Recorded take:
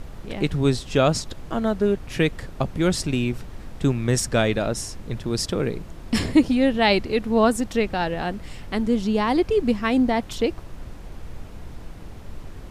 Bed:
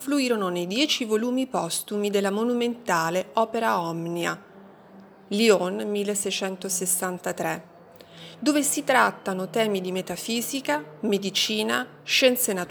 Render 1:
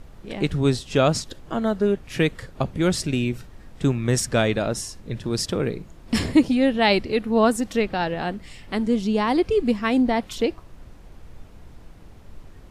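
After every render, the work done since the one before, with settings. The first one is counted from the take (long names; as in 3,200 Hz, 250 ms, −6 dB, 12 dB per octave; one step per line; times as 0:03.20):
noise reduction from a noise print 7 dB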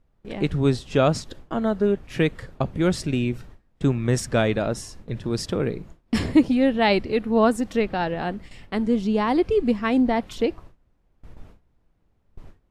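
noise gate with hold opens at −31 dBFS
high-shelf EQ 3,500 Hz −7.5 dB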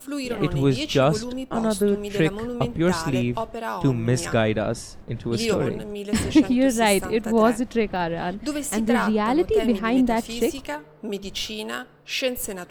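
mix in bed −6 dB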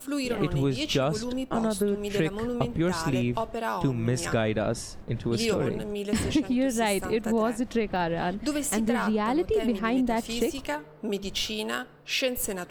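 downward compressor 5 to 1, threshold −22 dBFS, peak gain reduction 11 dB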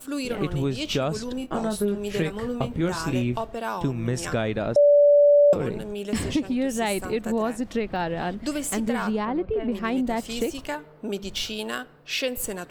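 0:01.35–0:03.36: double-tracking delay 24 ms −8 dB
0:04.76–0:05.53: beep over 580 Hz −12 dBFS
0:09.25–0:09.72: high-frequency loss of the air 460 metres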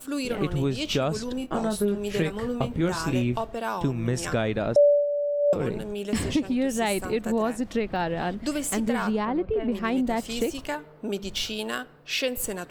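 0:04.81–0:05.63: duck −11 dB, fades 0.25 s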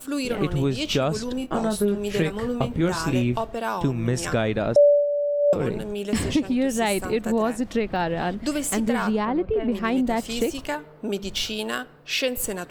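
level +2.5 dB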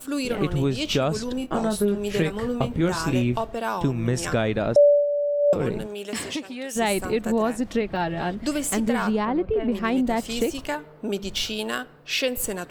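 0:05.86–0:06.75: high-pass filter 410 Hz → 1,500 Hz 6 dB per octave
0:07.81–0:08.37: notch comb filter 250 Hz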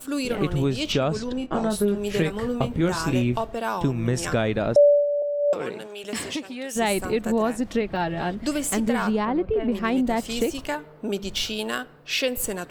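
0:00.92–0:01.70: high-frequency loss of the air 62 metres
0:05.22–0:06.04: meter weighting curve A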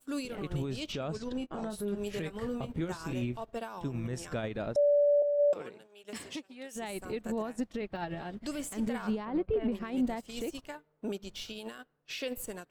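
brickwall limiter −21 dBFS, peak gain reduction 11.5 dB
expander for the loud parts 2.5 to 1, over −42 dBFS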